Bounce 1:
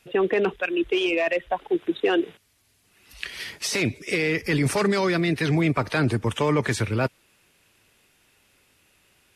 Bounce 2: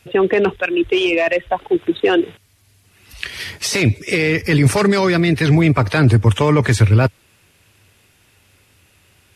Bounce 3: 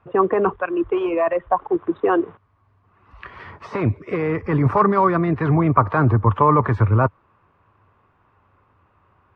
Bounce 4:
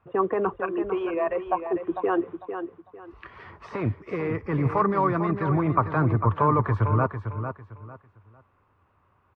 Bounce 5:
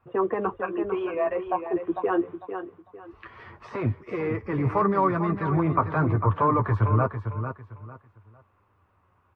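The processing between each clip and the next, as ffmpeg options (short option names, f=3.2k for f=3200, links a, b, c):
-af "equalizer=f=94:t=o:w=0.88:g=12,volume=6.5dB"
-af "lowpass=f=1.1k:t=q:w=5.2,volume=-5dB"
-af "aecho=1:1:450|900|1350:0.376|0.0977|0.0254,volume=-6.5dB"
-af "flanger=delay=7.9:depth=4.1:regen=-29:speed=0.26:shape=triangular,volume=3dB"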